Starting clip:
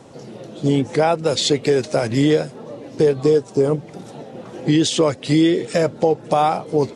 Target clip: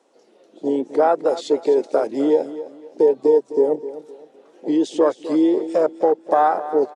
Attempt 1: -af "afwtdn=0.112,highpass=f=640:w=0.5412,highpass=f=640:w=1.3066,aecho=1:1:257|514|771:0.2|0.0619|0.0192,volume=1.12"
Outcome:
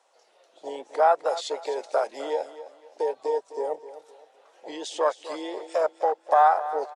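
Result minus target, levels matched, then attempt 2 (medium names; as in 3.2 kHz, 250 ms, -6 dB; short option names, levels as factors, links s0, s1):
250 Hz band -15.0 dB
-af "afwtdn=0.112,highpass=f=310:w=0.5412,highpass=f=310:w=1.3066,aecho=1:1:257|514|771:0.2|0.0619|0.0192,volume=1.12"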